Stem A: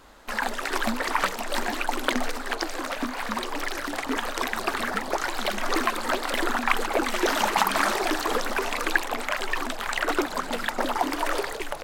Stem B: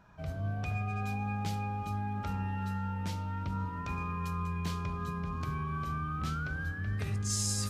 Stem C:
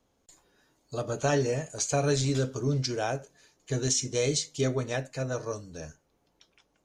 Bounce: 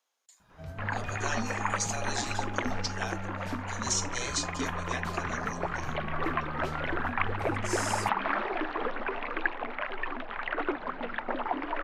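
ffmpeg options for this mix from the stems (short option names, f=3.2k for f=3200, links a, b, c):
-filter_complex "[0:a]lowpass=f=2.7k:w=0.5412,lowpass=f=2.7k:w=1.3066,adelay=500,volume=-6dB[a];[1:a]adelay=400,volume=-4dB[b];[2:a]highpass=1.1k,volume=-2dB[c];[a][b][c]amix=inputs=3:normalize=0"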